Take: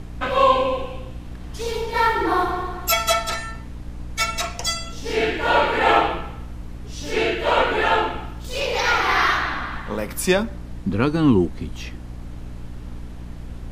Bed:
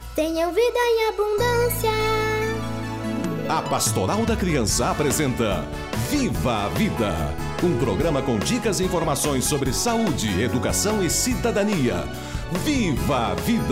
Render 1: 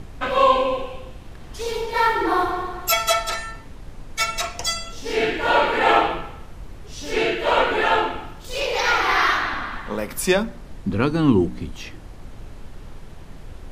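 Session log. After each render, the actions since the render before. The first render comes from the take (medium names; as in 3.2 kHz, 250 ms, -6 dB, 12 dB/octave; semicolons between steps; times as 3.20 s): de-hum 60 Hz, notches 5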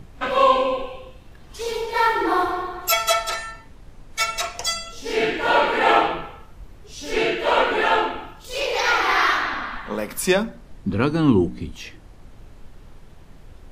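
noise print and reduce 6 dB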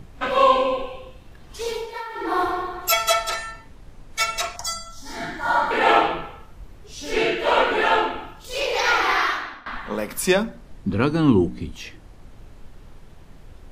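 1.67–2.46 s: dip -16.5 dB, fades 0.37 s; 4.56–5.71 s: static phaser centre 1.1 kHz, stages 4; 9.05–9.66 s: fade out, to -21.5 dB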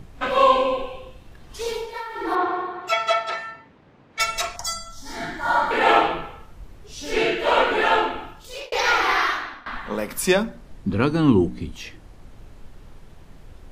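2.35–4.20 s: band-pass 160–2900 Hz; 8.21–8.72 s: fade out equal-power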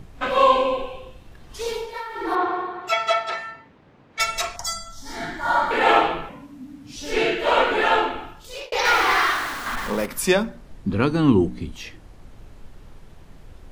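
6.29–6.96 s: frequency shift -300 Hz; 8.85–10.06 s: jump at every zero crossing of -27.5 dBFS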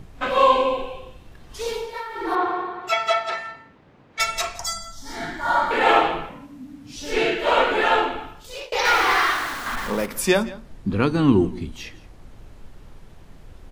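delay 171 ms -19.5 dB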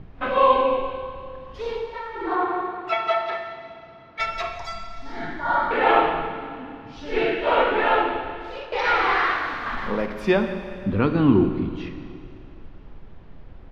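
distance through air 300 m; Schroeder reverb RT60 2.5 s, combs from 29 ms, DRR 7.5 dB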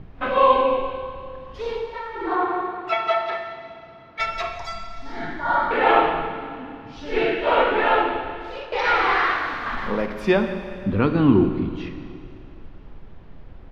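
trim +1 dB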